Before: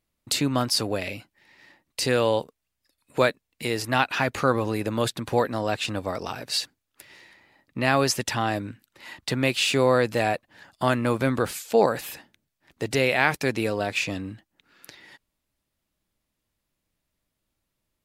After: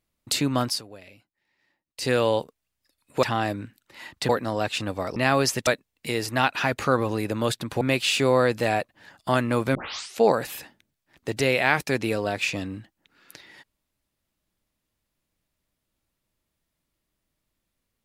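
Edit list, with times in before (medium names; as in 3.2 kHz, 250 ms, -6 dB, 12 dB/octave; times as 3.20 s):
0.68–2.09 s: dip -17 dB, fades 0.14 s
3.23–5.37 s: swap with 8.29–9.35 s
6.24–7.78 s: delete
11.29 s: tape start 0.45 s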